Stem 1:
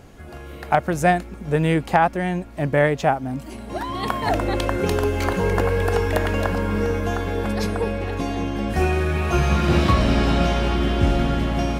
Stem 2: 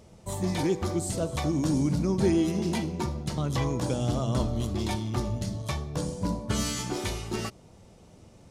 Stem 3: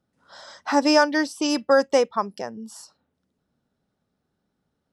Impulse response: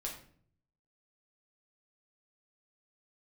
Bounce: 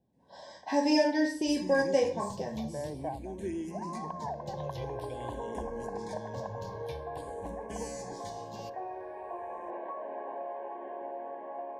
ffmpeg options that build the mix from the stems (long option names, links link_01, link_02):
-filter_complex "[0:a]agate=range=-24dB:threshold=-32dB:ratio=16:detection=peak,highpass=frequency=500:width=0.5412,highpass=frequency=500:width=1.3066,volume=-8dB[link_01];[1:a]asplit=2[link_02][link_03];[link_03]afreqshift=-0.49[link_04];[link_02][link_04]amix=inputs=2:normalize=1,adelay=1200,volume=-12.5dB,asplit=2[link_05][link_06];[link_06]volume=-13dB[link_07];[2:a]volume=-1dB,asplit=3[link_08][link_09][link_10];[link_09]volume=-7.5dB[link_11];[link_10]apad=whole_len=520291[link_12];[link_01][link_12]sidechaincompress=threshold=-36dB:ratio=8:attack=16:release=724[link_13];[link_13][link_08]amix=inputs=2:normalize=0,lowpass=frequency=1200:width=0.5412,lowpass=frequency=1200:width=1.3066,acompressor=threshold=-36dB:ratio=3,volume=0dB[link_14];[3:a]atrim=start_sample=2205[link_15];[link_07][link_11]amix=inputs=2:normalize=0[link_16];[link_16][link_15]afir=irnorm=-1:irlink=0[link_17];[link_05][link_14][link_17]amix=inputs=3:normalize=0,asuperstop=centerf=1300:order=20:qfactor=3.2"